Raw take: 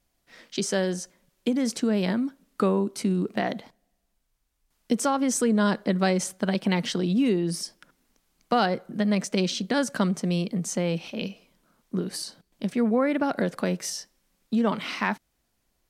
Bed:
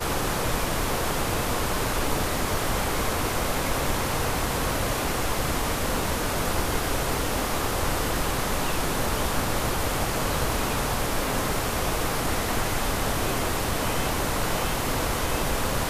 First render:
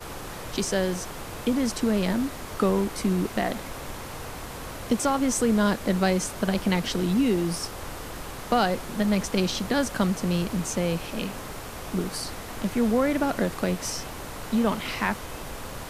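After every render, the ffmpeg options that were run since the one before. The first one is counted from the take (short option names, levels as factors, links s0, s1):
-filter_complex "[1:a]volume=0.282[s0];[0:a][s0]amix=inputs=2:normalize=0"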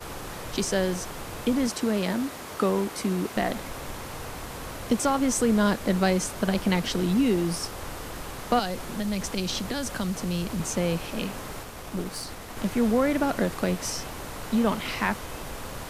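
-filter_complex "[0:a]asettb=1/sr,asplit=3[s0][s1][s2];[s0]atrim=end=1.674[s3];[s1]atrim=start=1.67:end=3.37,asetpts=PTS-STARTPTS,afade=t=in:d=0.004:c=qsin,afade=t=out:st=1.696:d=0.004:c=qsin,highpass=f=190:p=1[s4];[s2]atrim=start=3.366[s5];[s3][s4]acrossfade=d=0.004:c1=hsin:c2=qsin[s6];[s6][s5]acrossfade=d=0.004:c1=qsin:c2=hsin,asettb=1/sr,asplit=3[s7][s8][s9];[s7]atrim=end=8.594[s10];[s8]atrim=start=8.59:end=10.6,asetpts=PTS-STARTPTS,afade=t=in:d=0.004:c=qsin,afade=t=out:st=2.006:d=0.004:c=qsin,acrossover=split=130|3000[s11][s12][s13];[s12]acompressor=threshold=0.0398:ratio=4:attack=3.2:release=140:knee=2.83:detection=peak[s14];[s11][s14][s13]amix=inputs=3:normalize=0[s15];[s9]atrim=start=10.596[s16];[s10][s15]acrossfade=d=0.004:c1=hsin:c2=qsin[s17];[s17][s16]acrossfade=d=0.004:c1=qsin:c2=hsin,asettb=1/sr,asplit=3[s18][s19][s20];[s18]atrim=end=11.634[s21];[s19]atrim=start=11.63:end=12.57,asetpts=PTS-STARTPTS,afade=t=in:d=0.004:c=qsin,afade=t=out:st=0.936:d=0.004:c=qsin,aeval=exprs='(tanh(8.91*val(0)+0.6)-tanh(0.6))/8.91':c=same[s22];[s20]atrim=start=12.566[s23];[s21][s22]acrossfade=d=0.004:c1=hsin:c2=qsin[s24];[s24][s23]acrossfade=d=0.004:c1=qsin:c2=hsin"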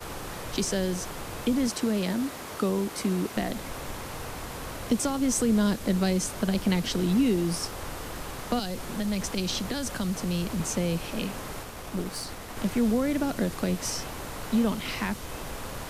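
-filter_complex "[0:a]acrossover=split=380|3000[s0][s1][s2];[s1]acompressor=threshold=0.0178:ratio=2.5[s3];[s0][s3][s2]amix=inputs=3:normalize=0"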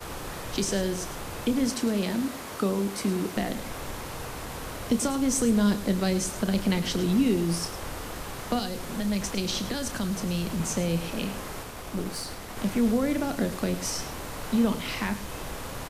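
-filter_complex "[0:a]asplit=2[s0][s1];[s1]adelay=30,volume=0.266[s2];[s0][s2]amix=inputs=2:normalize=0,aecho=1:1:106:0.224"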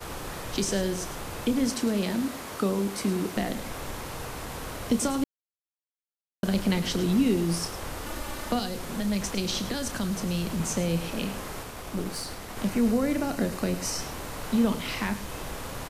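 -filter_complex "[0:a]asettb=1/sr,asplit=3[s0][s1][s2];[s0]atrim=end=8.064[s3];[s1]atrim=start=8.06:end=8.52,asetpts=PTS-STARTPTS,afade=t=in:d=0.004:c=qsin,afade=t=out:st=0.456:d=0.004:c=qsin,aecho=1:1:3.4:0.65,atrim=end_sample=20286[s4];[s2]atrim=start=8.516[s5];[s3][s4]acrossfade=d=0.004:c1=hsin:c2=qsin[s6];[s6][s5]acrossfade=d=0.004:c1=qsin:c2=hsin,asettb=1/sr,asplit=3[s7][s8][s9];[s7]atrim=end=12.694[s10];[s8]atrim=start=12.69:end=14.01,asetpts=PTS-STARTPTS,afade=t=in:d=0.004:c=qsin,afade=t=out:st=1.316:d=0.004:c=qsin,bandreject=f=3400:w=12[s11];[s9]atrim=start=14.006[s12];[s10][s11]acrossfade=d=0.004:c1=hsin:c2=qsin[s13];[s13][s12]acrossfade=d=0.004:c1=qsin:c2=hsin,asplit=3[s14][s15][s16];[s14]atrim=end=5.24,asetpts=PTS-STARTPTS,afade=t=out:st=5.236:d=0.004:c=hsin[s17];[s15]atrim=start=5.24:end=6.43,asetpts=PTS-STARTPTS,volume=0[s18];[s16]atrim=start=6.43,asetpts=PTS-STARTPTS,afade=t=in:d=0.004:c=hsin[s19];[s17][s18][s19]concat=n=3:v=0:a=1"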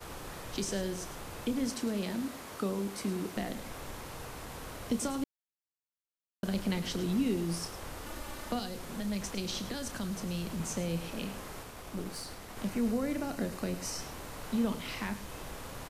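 -af "volume=0.447"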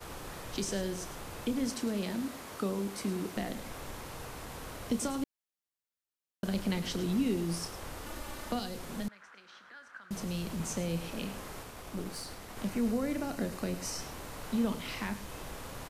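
-filter_complex "[0:a]asettb=1/sr,asplit=3[s0][s1][s2];[s0]atrim=end=9.084[s3];[s1]atrim=start=9.08:end=10.11,asetpts=PTS-STARTPTS,afade=t=in:d=0.004:c=qsin,afade=t=out:st=1.026:d=0.004:c=qsin,bandpass=f=1500:t=q:w=4.3[s4];[s2]atrim=start=10.106[s5];[s3][s4]acrossfade=d=0.004:c1=hsin:c2=qsin[s6];[s6][s5]acrossfade=d=0.004:c1=qsin:c2=hsin"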